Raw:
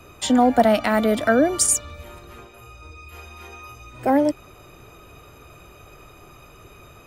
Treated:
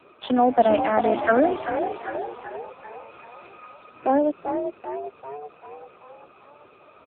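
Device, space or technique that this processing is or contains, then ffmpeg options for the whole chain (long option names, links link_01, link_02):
telephone: -filter_complex "[0:a]asplit=3[link_01][link_02][link_03];[link_01]afade=type=out:start_time=0.66:duration=0.02[link_04];[link_02]lowpass=7500,afade=type=in:start_time=0.66:duration=0.02,afade=type=out:start_time=1.5:duration=0.02[link_05];[link_03]afade=type=in:start_time=1.5:duration=0.02[link_06];[link_04][link_05][link_06]amix=inputs=3:normalize=0,equalizer=frequency=2000:width=4.5:gain=-4.5,asplit=8[link_07][link_08][link_09][link_10][link_11][link_12][link_13][link_14];[link_08]adelay=390,afreqshift=48,volume=-7dB[link_15];[link_09]adelay=780,afreqshift=96,volume=-12.2dB[link_16];[link_10]adelay=1170,afreqshift=144,volume=-17.4dB[link_17];[link_11]adelay=1560,afreqshift=192,volume=-22.6dB[link_18];[link_12]adelay=1950,afreqshift=240,volume=-27.8dB[link_19];[link_13]adelay=2340,afreqshift=288,volume=-33dB[link_20];[link_14]adelay=2730,afreqshift=336,volume=-38.2dB[link_21];[link_07][link_15][link_16][link_17][link_18][link_19][link_20][link_21]amix=inputs=8:normalize=0,highpass=300,lowpass=3300" -ar 8000 -c:a libopencore_amrnb -b:a 5900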